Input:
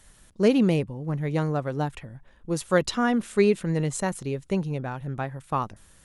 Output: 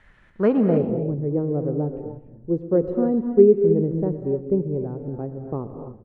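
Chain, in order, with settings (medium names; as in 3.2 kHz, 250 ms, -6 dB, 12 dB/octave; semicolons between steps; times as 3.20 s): low-pass sweep 2 kHz -> 410 Hz, 0.29–0.90 s; feedback delay 120 ms, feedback 46%, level -18 dB; gated-style reverb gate 320 ms rising, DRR 6 dB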